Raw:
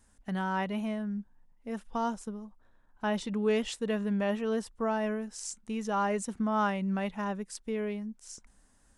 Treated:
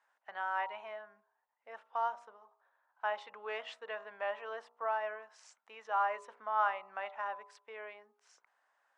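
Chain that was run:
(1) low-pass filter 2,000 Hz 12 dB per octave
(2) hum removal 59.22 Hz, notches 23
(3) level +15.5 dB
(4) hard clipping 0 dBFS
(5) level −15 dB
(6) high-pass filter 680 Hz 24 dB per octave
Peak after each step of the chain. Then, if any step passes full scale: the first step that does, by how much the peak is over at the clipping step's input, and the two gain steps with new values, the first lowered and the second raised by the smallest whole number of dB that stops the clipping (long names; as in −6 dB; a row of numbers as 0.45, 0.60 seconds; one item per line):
−18.0, −18.0, −2.5, −2.5, −17.5, −18.5 dBFS
no step passes full scale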